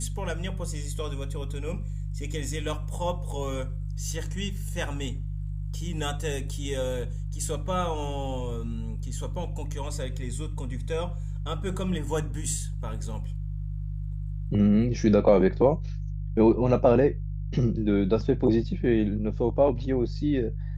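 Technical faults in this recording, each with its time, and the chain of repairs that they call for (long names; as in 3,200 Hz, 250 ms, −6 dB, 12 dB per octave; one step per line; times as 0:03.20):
mains hum 50 Hz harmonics 3 −32 dBFS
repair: hum removal 50 Hz, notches 3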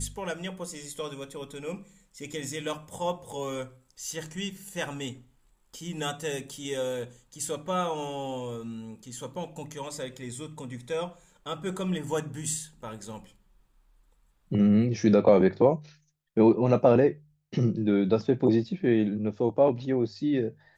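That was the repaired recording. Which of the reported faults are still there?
none of them is left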